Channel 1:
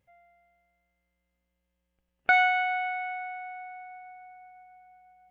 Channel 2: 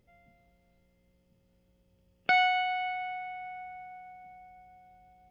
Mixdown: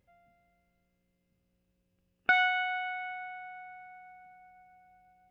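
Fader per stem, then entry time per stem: -2.5, -9.0 dB; 0.00, 0.00 s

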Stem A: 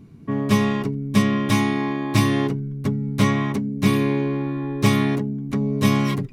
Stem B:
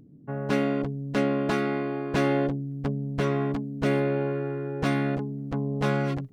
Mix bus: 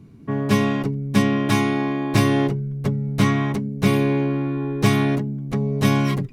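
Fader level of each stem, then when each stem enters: -0.5, -1.5 dB; 0.00, 0.00 s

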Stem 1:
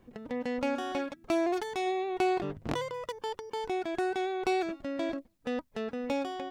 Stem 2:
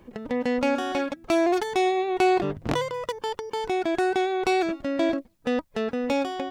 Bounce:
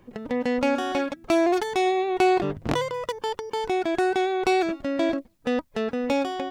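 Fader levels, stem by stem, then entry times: +0.5, -4.0 dB; 0.00, 0.00 s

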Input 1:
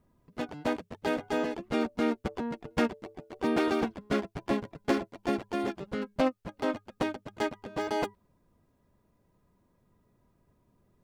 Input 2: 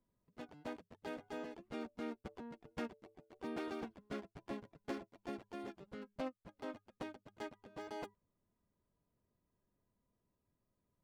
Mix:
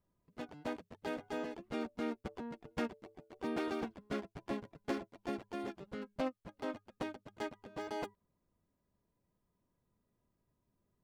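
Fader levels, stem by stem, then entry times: -13.5, -4.5 dB; 0.00, 0.00 s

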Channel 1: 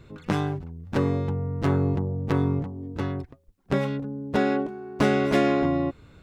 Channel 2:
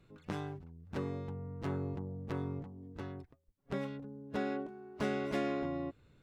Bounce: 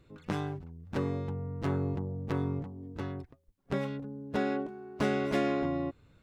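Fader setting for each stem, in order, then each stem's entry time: -13.0, -1.5 dB; 0.00, 0.00 s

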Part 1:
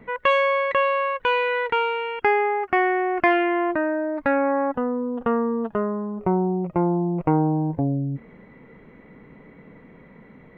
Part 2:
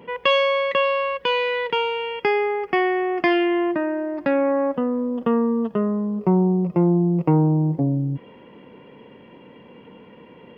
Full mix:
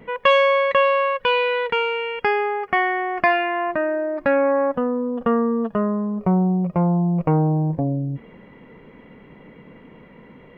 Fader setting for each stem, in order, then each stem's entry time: +1.0, -6.0 dB; 0.00, 0.00 s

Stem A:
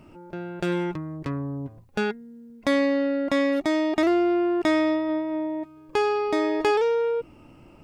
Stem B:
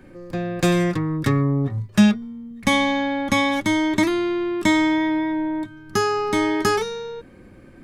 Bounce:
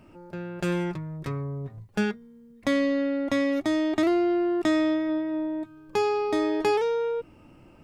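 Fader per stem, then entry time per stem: -3.0, -16.0 dB; 0.00, 0.00 s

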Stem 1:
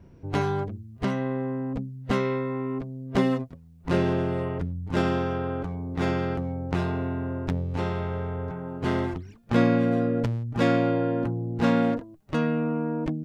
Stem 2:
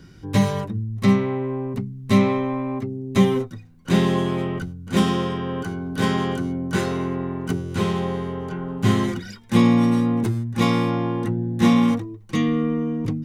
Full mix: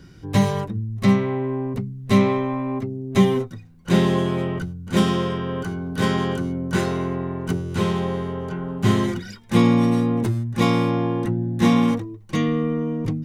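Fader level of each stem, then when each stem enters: -8.5, 0.0 dB; 0.00, 0.00 s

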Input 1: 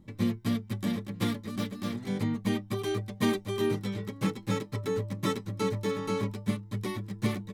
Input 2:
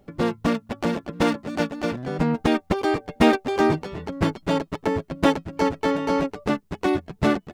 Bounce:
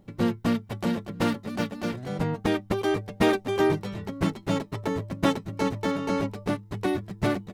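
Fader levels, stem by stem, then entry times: -2.0, -5.5 dB; 0.00, 0.00 s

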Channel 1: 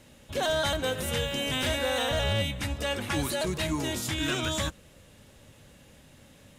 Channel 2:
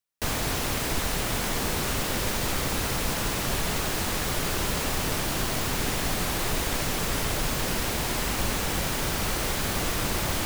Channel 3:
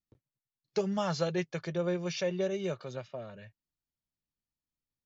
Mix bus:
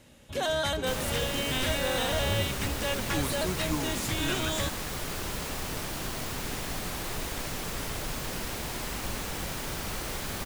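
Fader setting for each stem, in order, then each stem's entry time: -1.5, -7.0, -12.0 dB; 0.00, 0.65, 0.00 s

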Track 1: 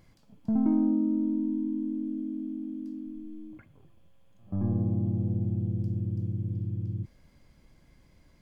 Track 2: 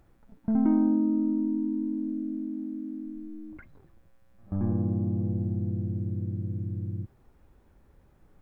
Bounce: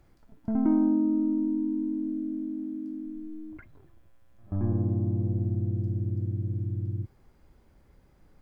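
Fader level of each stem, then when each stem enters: -8.5, -0.5 dB; 0.00, 0.00 s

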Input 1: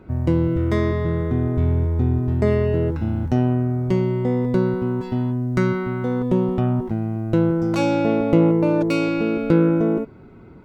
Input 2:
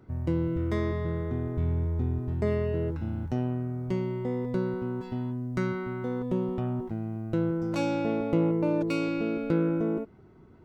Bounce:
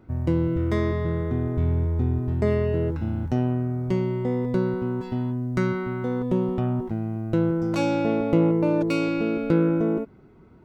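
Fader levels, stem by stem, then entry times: -11.0, 0.0 dB; 0.00, 0.00 s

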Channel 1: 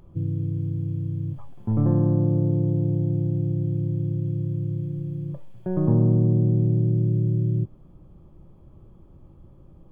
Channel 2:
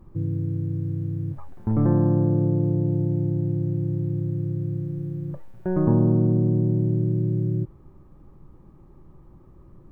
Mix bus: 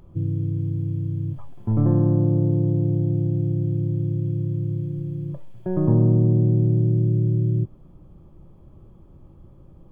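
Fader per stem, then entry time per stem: +1.5, -16.5 dB; 0.00, 0.00 s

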